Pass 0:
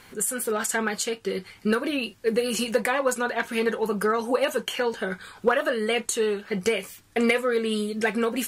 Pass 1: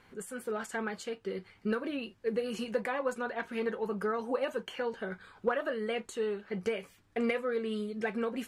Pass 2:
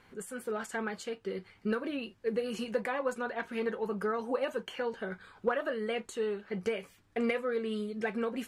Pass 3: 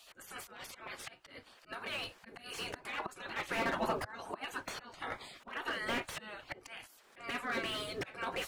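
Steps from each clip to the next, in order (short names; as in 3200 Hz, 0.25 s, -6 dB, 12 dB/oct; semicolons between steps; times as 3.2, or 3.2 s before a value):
LPF 1900 Hz 6 dB/oct; gain -8 dB
nothing audible
auto swell 0.523 s; spectral gate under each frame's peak -15 dB weak; slew limiter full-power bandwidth 6.9 Hz; gain +15 dB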